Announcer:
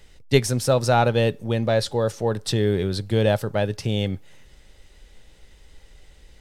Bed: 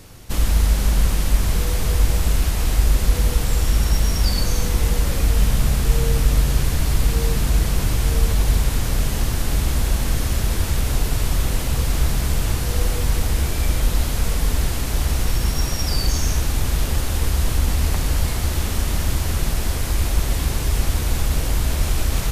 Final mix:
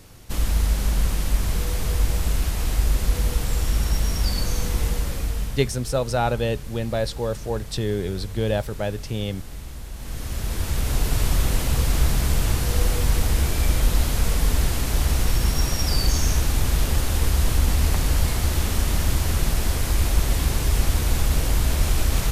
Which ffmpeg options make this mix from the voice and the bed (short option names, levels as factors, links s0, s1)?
-filter_complex "[0:a]adelay=5250,volume=0.631[s0];[1:a]volume=3.98,afade=t=out:st=4.81:d=0.92:silence=0.237137,afade=t=in:st=9.93:d=1.28:silence=0.158489[s1];[s0][s1]amix=inputs=2:normalize=0"